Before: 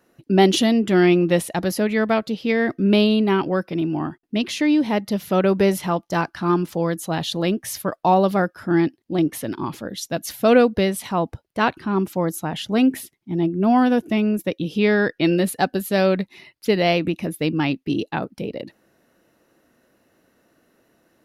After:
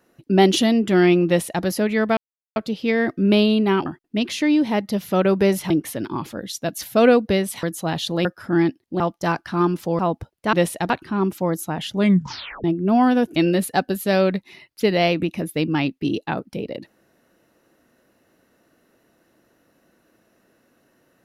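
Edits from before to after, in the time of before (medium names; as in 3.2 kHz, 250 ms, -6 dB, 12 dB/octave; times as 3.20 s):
1.27–1.64 s: copy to 11.65 s
2.17 s: insert silence 0.39 s
3.47–4.05 s: delete
5.89–6.88 s: swap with 9.18–11.11 s
7.50–8.43 s: delete
12.70 s: tape stop 0.69 s
14.11–15.21 s: delete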